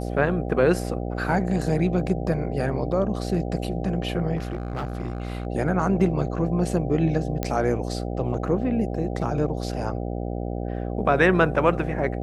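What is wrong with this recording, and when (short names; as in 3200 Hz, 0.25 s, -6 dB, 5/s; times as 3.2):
buzz 60 Hz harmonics 13 -29 dBFS
4.36–5.47 clipped -24.5 dBFS
7.43 pop -11 dBFS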